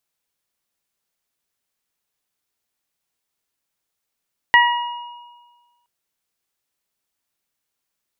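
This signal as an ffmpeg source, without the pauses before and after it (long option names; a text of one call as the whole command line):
ffmpeg -f lavfi -i "aevalsrc='0.282*pow(10,-3*t/1.42)*sin(2*PI*960*t)+0.422*pow(10,-3*t/0.52)*sin(2*PI*1920*t)+0.112*pow(10,-3*t/1.34)*sin(2*PI*2880*t)':duration=1.32:sample_rate=44100" out.wav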